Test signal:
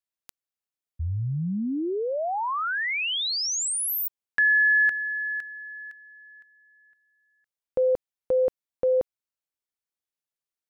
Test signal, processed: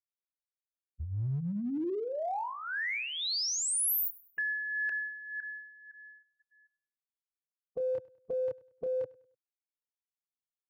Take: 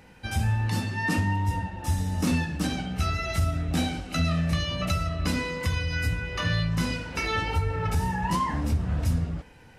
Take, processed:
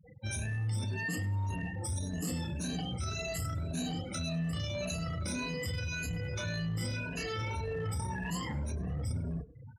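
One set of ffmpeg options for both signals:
-filter_complex "[0:a]afftfilt=real='re*pow(10,16/40*sin(2*PI*(1.5*log(max(b,1)*sr/1024/100)/log(2)-(1.8)*(pts-256)/sr)))':imag='im*pow(10,16/40*sin(2*PI*(1.5*log(max(b,1)*sr/1024/100)/log(2)-(1.8)*(pts-256)/sr)))':win_size=1024:overlap=0.75,asplit=2[a][b];[b]adelay=29,volume=-7dB[c];[a][c]amix=inputs=2:normalize=0,afftfilt=real='re*gte(hypot(re,im),0.0158)':imag='im*gte(hypot(re,im),0.0158)':win_size=1024:overlap=0.75,equalizer=f=125:t=o:w=1:g=7,equalizer=f=500:t=o:w=1:g=5,equalizer=f=1k:t=o:w=1:g=-5,equalizer=f=8k:t=o:w=1:g=11,areverse,acompressor=threshold=-26dB:ratio=6:attack=0.13:release=44:knee=6:detection=peak,areverse,aecho=1:1:100|200|300:0.0794|0.0286|0.0103,crystalizer=i=0.5:c=0,highpass=54,volume=-5dB"

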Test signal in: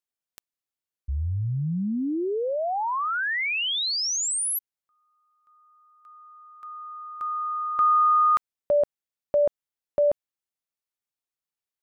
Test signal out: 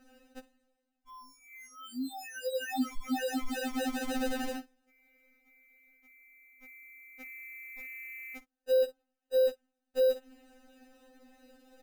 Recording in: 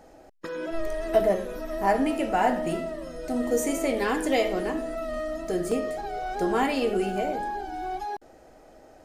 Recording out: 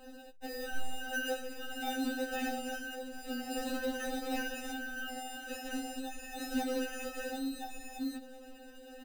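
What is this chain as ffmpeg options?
-filter_complex "[0:a]areverse,acompressor=mode=upward:threshold=-45dB:ratio=2.5:attack=66:release=307:knee=2.83:detection=peak,areverse,highshelf=f=3.2k:g=8.5,acrossover=split=840|8000[a][b][c];[a]acompressor=threshold=-55dB:ratio=1.5[d];[b]acompressor=threshold=-28dB:ratio=5[e];[c]acompressor=threshold=-52dB:ratio=6[f];[d][e][f]amix=inputs=3:normalize=0,adynamicequalizer=threshold=0.00631:dfrequency=1300:dqfactor=2.9:tfrequency=1300:tqfactor=2.9:attack=5:release=100:ratio=0.375:range=1.5:mode=cutabove:tftype=bell,aecho=1:1:14|56:0.422|0.133,acrusher=samples=40:mix=1:aa=0.000001,asoftclip=type=tanh:threshold=-25dB,afftfilt=real='re*3.46*eq(mod(b,12),0)':imag='im*3.46*eq(mod(b,12),0)':win_size=2048:overlap=0.75"

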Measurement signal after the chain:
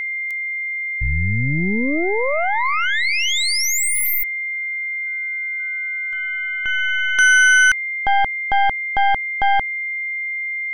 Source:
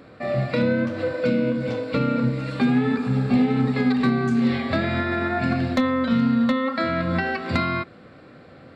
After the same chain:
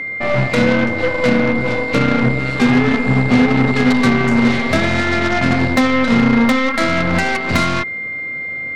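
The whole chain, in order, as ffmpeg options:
-af "aeval=exprs='0.266*(cos(1*acos(clip(val(0)/0.266,-1,1)))-cos(1*PI/2))+0.0668*(cos(2*acos(clip(val(0)/0.266,-1,1)))-cos(2*PI/2))+0.0422*(cos(8*acos(clip(val(0)/0.266,-1,1)))-cos(8*PI/2))':c=same,aeval=exprs='val(0)+0.0398*sin(2*PI*2100*n/s)':c=same,volume=6dB"

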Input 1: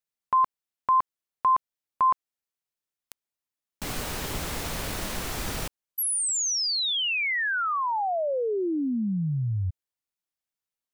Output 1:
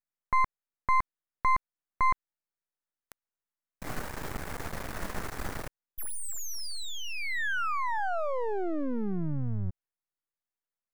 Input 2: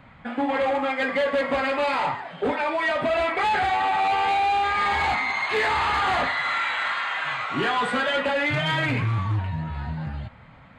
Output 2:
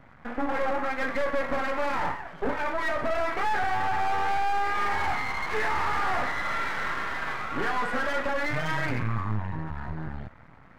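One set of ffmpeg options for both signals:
-af "aeval=exprs='max(val(0),0)':c=same,highshelf=f=2.3k:t=q:w=1.5:g=-7"

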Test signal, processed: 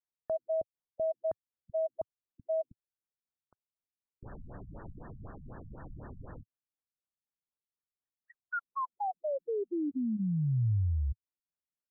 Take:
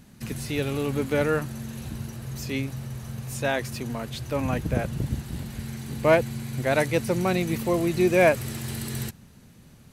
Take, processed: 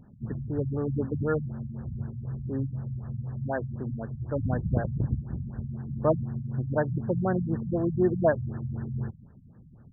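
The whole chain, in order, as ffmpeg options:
-af "equalizer=f=110:t=o:w=0.98:g=4.5,afftfilt=real='re*lt(b*sr/1024,200*pow(1900/200,0.5+0.5*sin(2*PI*4*pts/sr)))':imag='im*lt(b*sr/1024,200*pow(1900/200,0.5+0.5*sin(2*PI*4*pts/sr)))':win_size=1024:overlap=0.75,volume=-2.5dB"

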